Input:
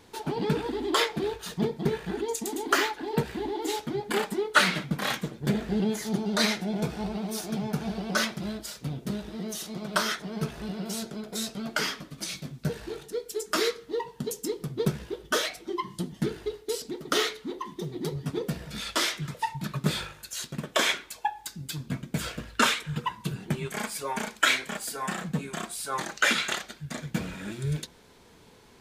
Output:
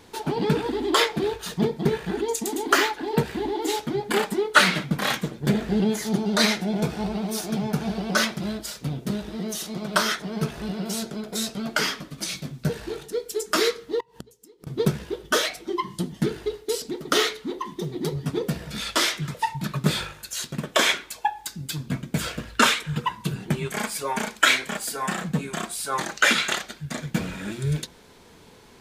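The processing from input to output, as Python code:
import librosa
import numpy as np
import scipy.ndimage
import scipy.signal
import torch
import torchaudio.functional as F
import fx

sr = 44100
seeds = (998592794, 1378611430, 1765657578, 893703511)

y = fx.gate_flip(x, sr, shuts_db=-26.0, range_db=-26, at=(14.0, 14.67))
y = fx.hum_notches(y, sr, base_hz=60, count=2)
y = y * 10.0 ** (4.5 / 20.0)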